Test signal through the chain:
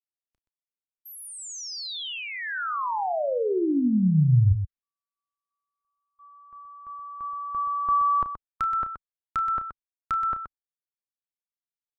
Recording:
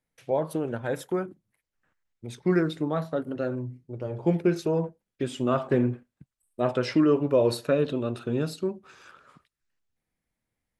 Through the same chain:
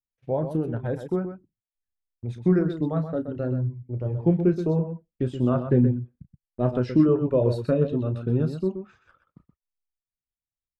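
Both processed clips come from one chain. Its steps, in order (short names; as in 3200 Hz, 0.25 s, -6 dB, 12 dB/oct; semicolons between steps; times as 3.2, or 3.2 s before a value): RIAA curve playback; gate -50 dBFS, range -25 dB; reverb removal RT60 0.73 s; dynamic EQ 2200 Hz, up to -5 dB, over -45 dBFS, Q 1.9; on a send: loudspeakers at several distances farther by 11 m -12 dB, 43 m -9 dB; on the sum: gain -3 dB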